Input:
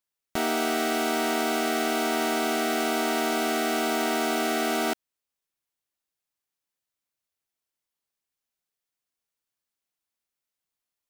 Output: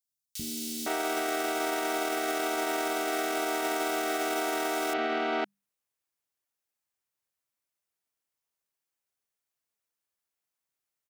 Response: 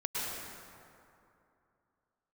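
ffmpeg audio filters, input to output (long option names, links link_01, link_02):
-filter_complex "[0:a]highpass=40,bandreject=frequency=50:width_type=h:width=6,bandreject=frequency=100:width_type=h:width=6,bandreject=frequency=150:width_type=h:width=6,bandreject=frequency=200:width_type=h:width=6,acrossover=split=240|3800[link_01][link_02][link_03];[link_01]adelay=40[link_04];[link_02]adelay=510[link_05];[link_04][link_05][link_03]amix=inputs=3:normalize=0,alimiter=limit=-20.5dB:level=0:latency=1:release=16"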